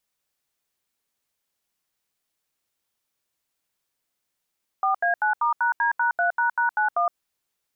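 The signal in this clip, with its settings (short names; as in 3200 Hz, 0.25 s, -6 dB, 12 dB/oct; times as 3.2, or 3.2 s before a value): DTMF "4A9*#D#3##91", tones 0.116 s, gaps 78 ms, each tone -21.5 dBFS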